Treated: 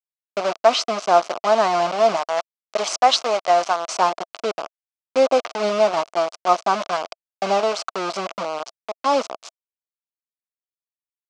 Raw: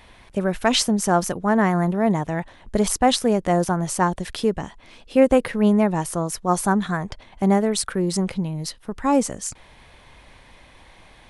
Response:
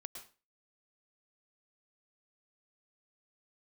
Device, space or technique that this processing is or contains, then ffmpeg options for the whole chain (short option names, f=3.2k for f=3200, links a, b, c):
hand-held game console: -filter_complex "[0:a]lowpass=f=8.8k:w=0.5412,lowpass=f=8.8k:w=1.3066,asettb=1/sr,asplit=3[a][b][c];[a]atrim=end=2.164[d];[b]atrim=start=2.16:end=3.97,asetpts=PTS-STARTPTS,afade=t=in:d=0.004:c=qsin,afade=t=out:st=1.806:d=0.004:c=qsin,tiltshelf=f=730:g=-7.5[e];[c]atrim=start=3.966[f];[d][e]acrossfade=d=0.004:c1=hsin:c2=qsin[g];[g][f]acrossfade=d=0.004:c1=qsin:c2=hsin,acrusher=bits=3:mix=0:aa=0.000001,highpass=490,equalizer=f=660:t=q:w=4:g=10,equalizer=f=1.2k:t=q:w=4:g=6,equalizer=f=1.8k:t=q:w=4:g=-9,equalizer=f=3.6k:t=q:w=4:g=-4,lowpass=f=5.8k:w=0.5412,lowpass=f=5.8k:w=1.3066"